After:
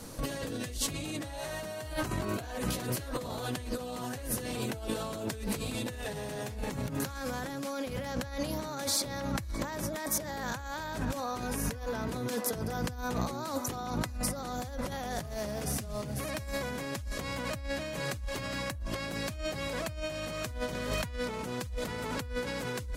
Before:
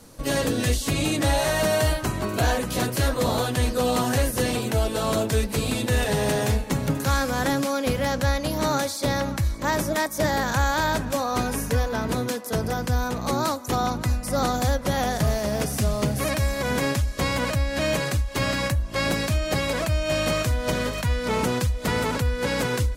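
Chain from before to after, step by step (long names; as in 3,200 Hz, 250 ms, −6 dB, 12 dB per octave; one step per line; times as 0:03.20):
compressor whose output falls as the input rises −32 dBFS, ratio −1
level −4 dB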